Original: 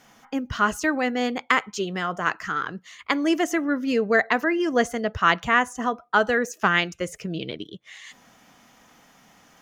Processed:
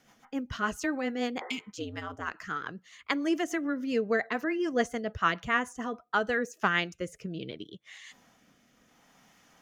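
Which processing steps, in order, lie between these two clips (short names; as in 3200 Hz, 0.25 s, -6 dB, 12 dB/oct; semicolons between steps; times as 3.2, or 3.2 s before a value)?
rotary speaker horn 7 Hz, later 0.7 Hz, at 5.88; 1.43–1.67 spectral repair 340–2100 Hz both; 1.76–2.34 ring modulator 82 Hz; gain -5 dB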